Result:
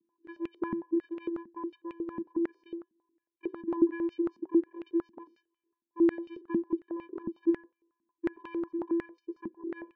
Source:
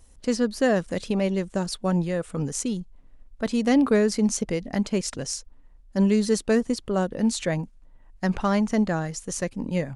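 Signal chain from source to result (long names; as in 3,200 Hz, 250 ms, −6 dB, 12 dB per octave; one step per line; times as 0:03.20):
notch filter 1,900 Hz
channel vocoder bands 8, square 337 Hz
high-frequency loss of the air 280 metres
on a send at −12 dB: convolution reverb RT60 0.65 s, pre-delay 3 ms
on the sum: band-pass on a step sequencer 11 Hz 220–2,600 Hz
level +3.5 dB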